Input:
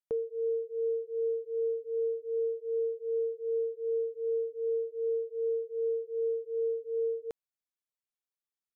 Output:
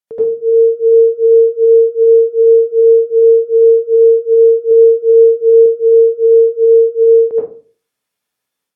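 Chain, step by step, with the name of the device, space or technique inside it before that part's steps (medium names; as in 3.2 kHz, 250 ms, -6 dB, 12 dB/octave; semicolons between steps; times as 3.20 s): low-pass that closes with the level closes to 630 Hz, closed at -31 dBFS; far laptop microphone (reverberation RT60 0.40 s, pre-delay 73 ms, DRR -10.5 dB; high-pass 110 Hz; level rider gain up to 6.5 dB); 4.71–5.66 s: peaking EQ 82 Hz +9 dB 2.3 oct; trim +4 dB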